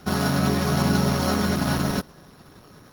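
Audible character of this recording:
a buzz of ramps at a fixed pitch in blocks of 8 samples
Opus

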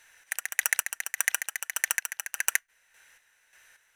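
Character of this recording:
chopped level 1.7 Hz, depth 60%, duty 40%

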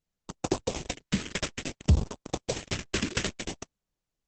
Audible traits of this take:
aliases and images of a low sample rate 4,400 Hz, jitter 20%
phaser sweep stages 2, 0.58 Hz, lowest notch 780–1,900 Hz
Opus

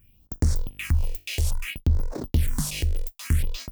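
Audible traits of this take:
phaser sweep stages 4, 0.6 Hz, lowest notch 180–3,000 Hz

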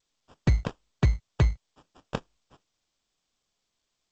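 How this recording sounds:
aliases and images of a low sample rate 2,100 Hz, jitter 0%
G.722

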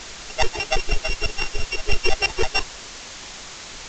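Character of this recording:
a buzz of ramps at a fixed pitch in blocks of 16 samples
tremolo saw down 0.54 Hz, depth 60%
a quantiser's noise floor 6 bits, dither triangular
mu-law

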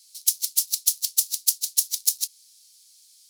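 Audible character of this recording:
background noise floor −56 dBFS
spectral slope +7.0 dB per octave

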